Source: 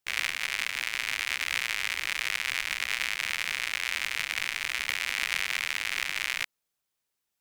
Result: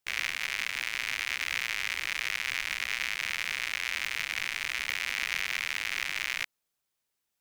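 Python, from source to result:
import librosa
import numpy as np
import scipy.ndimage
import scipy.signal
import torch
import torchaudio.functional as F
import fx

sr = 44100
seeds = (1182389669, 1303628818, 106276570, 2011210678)

y = 10.0 ** (-15.0 / 20.0) * np.tanh(x / 10.0 ** (-15.0 / 20.0))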